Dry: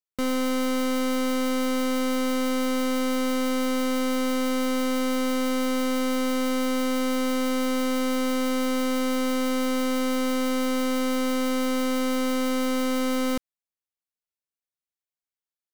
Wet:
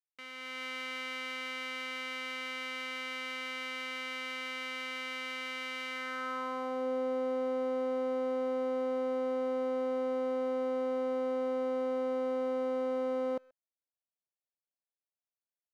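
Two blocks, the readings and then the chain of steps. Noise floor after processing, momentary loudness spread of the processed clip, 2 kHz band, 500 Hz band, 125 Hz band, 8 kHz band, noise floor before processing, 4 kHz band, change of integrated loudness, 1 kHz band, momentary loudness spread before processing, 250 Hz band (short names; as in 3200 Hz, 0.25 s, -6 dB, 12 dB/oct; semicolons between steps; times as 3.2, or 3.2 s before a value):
under -85 dBFS, 4 LU, -5.5 dB, -4.5 dB, n/a, under -20 dB, under -85 dBFS, -9.5 dB, -9.5 dB, -9.0 dB, 0 LU, -16.5 dB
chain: AGC gain up to 8 dB; band-pass sweep 2300 Hz -> 610 Hz, 5.88–6.87; speakerphone echo 0.13 s, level -24 dB; gain -8 dB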